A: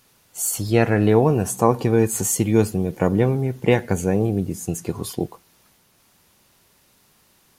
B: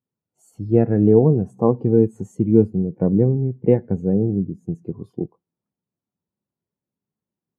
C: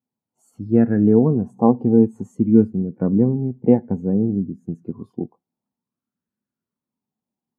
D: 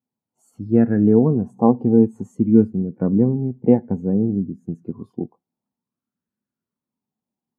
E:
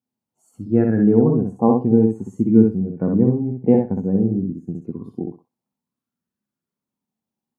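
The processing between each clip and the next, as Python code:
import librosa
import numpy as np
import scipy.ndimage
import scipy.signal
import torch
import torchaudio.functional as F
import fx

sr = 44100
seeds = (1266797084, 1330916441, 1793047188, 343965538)

y1 = scipy.signal.sosfilt(scipy.signal.bessel(2, 200.0, 'highpass', norm='mag', fs=sr, output='sos'), x)
y1 = fx.tilt_eq(y1, sr, slope=-4.0)
y1 = fx.spectral_expand(y1, sr, expansion=1.5)
y1 = y1 * librosa.db_to_amplitude(-3.5)
y2 = fx.peak_eq(y1, sr, hz=240.0, db=11.0, octaves=0.45)
y2 = fx.bell_lfo(y2, sr, hz=0.55, low_hz=760.0, high_hz=1600.0, db=11)
y2 = y2 * librosa.db_to_amplitude(-4.5)
y3 = y2
y4 = fx.echo_feedback(y3, sr, ms=63, feedback_pct=17, wet_db=-3.5)
y4 = y4 * librosa.db_to_amplitude(-1.0)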